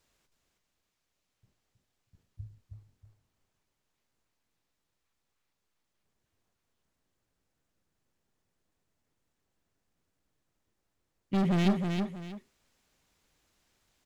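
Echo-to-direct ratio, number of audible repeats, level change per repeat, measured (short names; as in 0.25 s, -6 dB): -4.5 dB, 2, -10.5 dB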